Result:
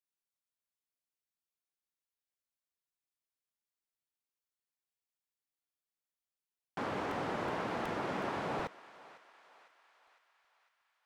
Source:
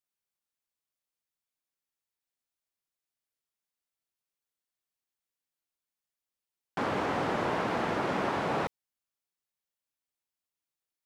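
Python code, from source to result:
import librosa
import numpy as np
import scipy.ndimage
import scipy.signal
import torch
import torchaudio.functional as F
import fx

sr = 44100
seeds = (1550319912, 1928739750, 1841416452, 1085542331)

p1 = x + fx.echo_thinned(x, sr, ms=504, feedback_pct=61, hz=720.0, wet_db=-16.5, dry=0)
p2 = fx.buffer_crackle(p1, sr, first_s=0.82, period_s=0.37, block=128, kind='repeat')
y = F.gain(torch.from_numpy(p2), -6.5).numpy()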